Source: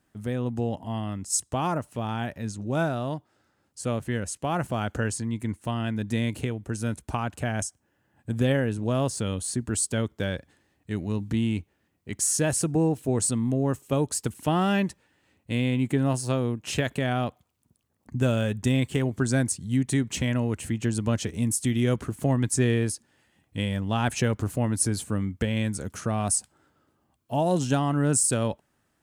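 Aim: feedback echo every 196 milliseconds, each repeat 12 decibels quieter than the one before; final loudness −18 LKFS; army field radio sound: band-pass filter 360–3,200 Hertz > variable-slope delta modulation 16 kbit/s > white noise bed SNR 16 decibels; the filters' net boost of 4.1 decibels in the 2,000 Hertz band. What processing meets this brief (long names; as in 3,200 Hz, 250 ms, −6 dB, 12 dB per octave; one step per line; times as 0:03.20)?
band-pass filter 360–3,200 Hz
parametric band 2,000 Hz +6 dB
repeating echo 196 ms, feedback 25%, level −12 dB
variable-slope delta modulation 16 kbit/s
white noise bed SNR 16 dB
level +15 dB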